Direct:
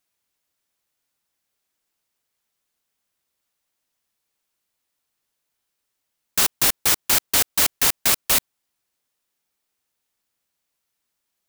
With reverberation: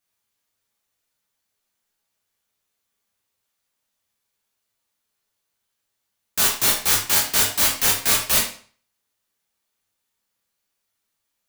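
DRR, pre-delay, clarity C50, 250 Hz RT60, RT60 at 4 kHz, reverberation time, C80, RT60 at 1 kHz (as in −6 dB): −4.0 dB, 11 ms, 5.5 dB, 0.45 s, 0.40 s, 0.45 s, 9.5 dB, 0.45 s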